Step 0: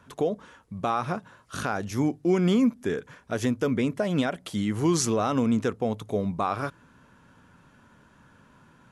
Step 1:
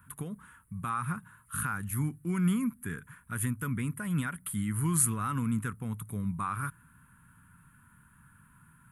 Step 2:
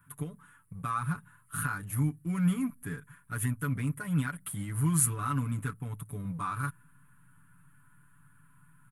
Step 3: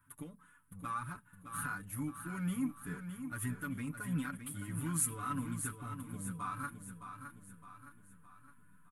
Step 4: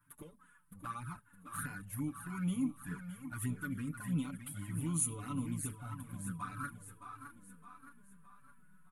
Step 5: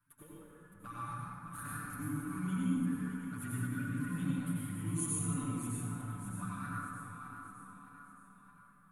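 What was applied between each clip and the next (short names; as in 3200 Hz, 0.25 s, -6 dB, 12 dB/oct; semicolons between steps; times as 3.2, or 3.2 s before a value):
EQ curve 160 Hz 0 dB, 410 Hz -20 dB, 680 Hz -27 dB, 970 Hz -7 dB, 1400 Hz -1 dB, 2500 Hz -8 dB, 5700 Hz -22 dB, 9500 Hz +13 dB
comb 6.9 ms, depth 95%; in parallel at -4.5 dB: backlash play -29.5 dBFS; on the sum: gain -6.5 dB
flange 0.86 Hz, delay 3.1 ms, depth 1 ms, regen -23%; on a send: feedback echo 0.614 s, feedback 48%, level -8.5 dB; on the sum: gain -2.5 dB
envelope flanger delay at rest 6.8 ms, full sweep at -34 dBFS; gain +1.5 dB
reverb RT60 2.6 s, pre-delay 79 ms, DRR -6.5 dB; gain -6 dB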